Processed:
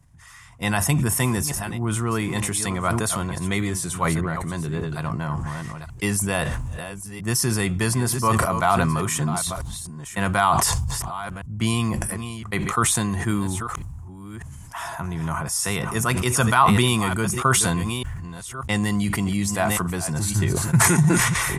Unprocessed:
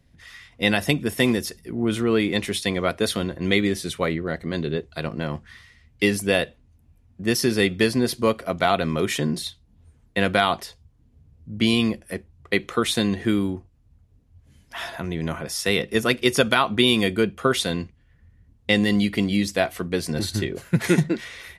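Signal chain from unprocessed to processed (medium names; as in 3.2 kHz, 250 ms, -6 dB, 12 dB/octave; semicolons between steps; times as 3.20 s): chunks repeated in reverse 601 ms, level -13 dB; ten-band graphic EQ 125 Hz +7 dB, 250 Hz -6 dB, 500 Hz -11 dB, 1 kHz +11 dB, 2 kHz -5 dB, 4 kHz -11 dB, 8 kHz +11 dB; decay stretcher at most 22 dB/s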